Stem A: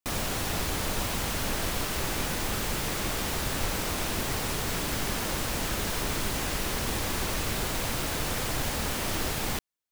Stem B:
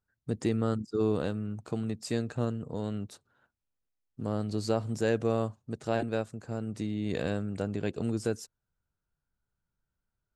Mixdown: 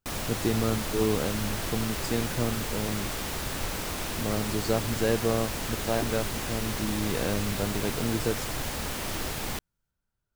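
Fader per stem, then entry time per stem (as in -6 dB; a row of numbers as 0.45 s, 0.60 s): -2.5 dB, +1.5 dB; 0.00 s, 0.00 s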